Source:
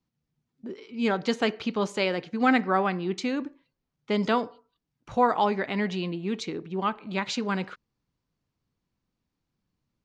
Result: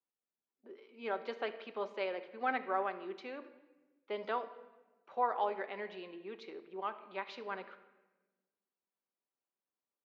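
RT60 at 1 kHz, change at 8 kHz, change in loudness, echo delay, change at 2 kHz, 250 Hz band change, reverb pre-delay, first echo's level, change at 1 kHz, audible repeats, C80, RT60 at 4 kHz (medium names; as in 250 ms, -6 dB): 1.1 s, under -25 dB, -12.0 dB, no echo, -11.5 dB, -22.0 dB, 5 ms, no echo, -9.5 dB, no echo, 15.0 dB, 0.85 s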